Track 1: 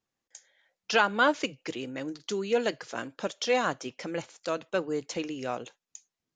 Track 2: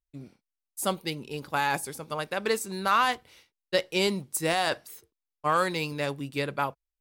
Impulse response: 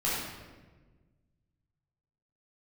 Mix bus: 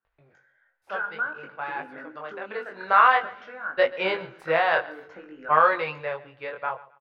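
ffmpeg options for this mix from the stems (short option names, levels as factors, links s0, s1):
-filter_complex "[0:a]highpass=f=270:p=1,acompressor=threshold=0.02:ratio=6,lowpass=f=1500:t=q:w=10,volume=0.631,asplit=2[s0][s1];[s1]volume=0.133[s2];[1:a]acompressor=mode=upward:threshold=0.01:ratio=2.5,firequalizer=gain_entry='entry(150,0);entry(230,-12);entry(470,11);entry(1700,13);entry(7400,-29)':delay=0.05:min_phase=1,adelay=50,volume=0.75,afade=t=in:st=2.55:d=0.39:silence=0.281838,afade=t=out:st=5.79:d=0.36:silence=0.446684,asplit=2[s3][s4];[s4]volume=0.112[s5];[2:a]atrim=start_sample=2205[s6];[s2][s6]afir=irnorm=-1:irlink=0[s7];[s5]aecho=0:1:133|266|399|532:1|0.25|0.0625|0.0156[s8];[s0][s3][s7][s8]amix=inputs=4:normalize=0,flanger=delay=19:depth=5.8:speed=0.54"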